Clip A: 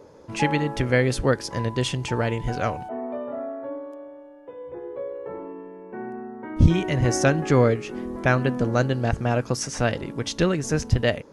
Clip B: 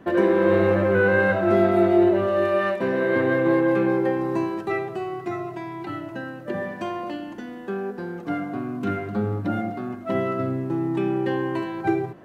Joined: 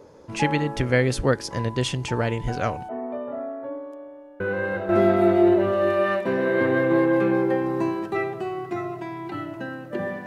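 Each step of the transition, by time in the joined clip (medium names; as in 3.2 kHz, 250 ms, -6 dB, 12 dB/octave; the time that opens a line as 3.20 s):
clip A
4.40 s: add clip B from 0.95 s 0.49 s -8 dB
4.89 s: go over to clip B from 1.44 s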